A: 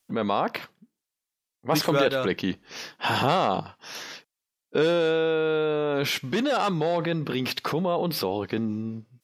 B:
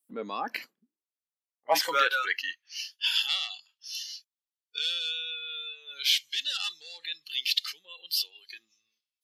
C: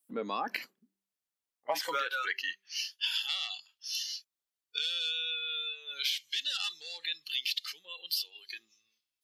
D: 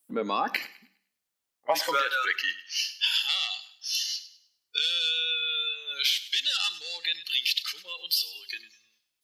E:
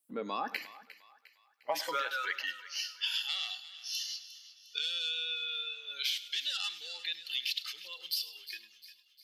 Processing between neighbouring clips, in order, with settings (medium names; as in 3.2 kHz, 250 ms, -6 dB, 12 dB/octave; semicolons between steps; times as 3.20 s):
spectral noise reduction 17 dB; high-pass sweep 260 Hz -> 3.4 kHz, 0.79–3.00 s
de-hum 195.1 Hz, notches 2; compression 12:1, threshold -31 dBFS, peak gain reduction 13 dB; trim +2 dB
thinning echo 102 ms, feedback 33%, high-pass 780 Hz, level -15 dB; on a send at -20 dB: reverberation RT60 0.70 s, pre-delay 3 ms; on the sum: trim +6.5 dB
thinning echo 354 ms, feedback 52%, high-pass 950 Hz, level -15 dB; trim -8 dB